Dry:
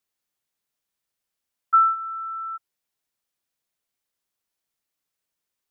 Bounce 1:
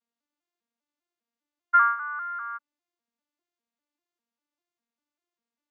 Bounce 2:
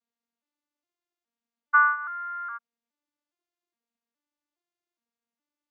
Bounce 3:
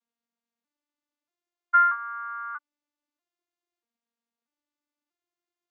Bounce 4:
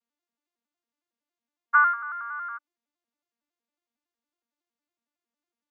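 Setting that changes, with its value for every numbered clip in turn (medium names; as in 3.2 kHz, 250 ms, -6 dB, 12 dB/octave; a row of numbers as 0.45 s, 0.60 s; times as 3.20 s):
vocoder on a broken chord, a note every: 199 ms, 414 ms, 637 ms, 92 ms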